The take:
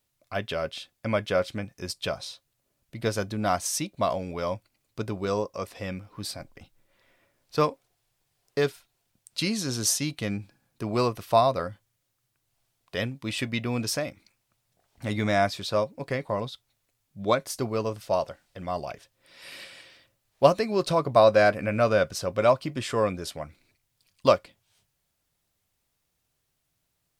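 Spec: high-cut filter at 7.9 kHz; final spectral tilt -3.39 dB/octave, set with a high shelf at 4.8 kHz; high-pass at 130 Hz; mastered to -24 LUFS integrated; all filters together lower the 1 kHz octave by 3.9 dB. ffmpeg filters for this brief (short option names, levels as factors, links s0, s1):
-af "highpass=130,lowpass=7900,equalizer=f=1000:t=o:g=-6,highshelf=f=4800:g=8,volume=1.68"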